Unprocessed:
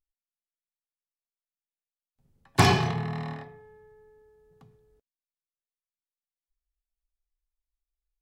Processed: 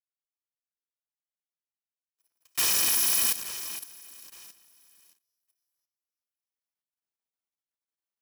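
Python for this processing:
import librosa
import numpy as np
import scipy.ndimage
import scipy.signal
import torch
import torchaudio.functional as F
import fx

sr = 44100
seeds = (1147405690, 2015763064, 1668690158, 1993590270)

p1 = fx.bit_reversed(x, sr, seeds[0], block=256)
p2 = scipy.signal.sosfilt(scipy.signal.butter(4, 590.0, 'highpass', fs=sr, output='sos'), p1)
p3 = fx.high_shelf(p2, sr, hz=11000.0, db=-3.5)
p4 = fx.fuzz(p3, sr, gain_db=40.0, gate_db=-41.0)
p5 = p3 + (p4 * 10.0 ** (-5.5 / 20.0))
p6 = fx.echo_feedback(p5, sr, ms=869, feedback_pct=20, wet_db=-16.5)
p7 = fx.level_steps(p6, sr, step_db=12)
y = p7 * np.sign(np.sin(2.0 * np.pi * 280.0 * np.arange(len(p7)) / sr))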